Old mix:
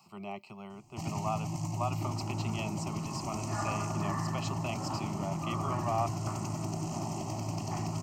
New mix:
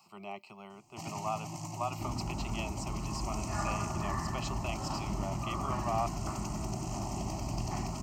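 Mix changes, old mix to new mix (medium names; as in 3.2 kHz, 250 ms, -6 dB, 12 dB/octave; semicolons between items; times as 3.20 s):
second sound: remove band-pass 350–2600 Hz; master: add bass shelf 250 Hz -10 dB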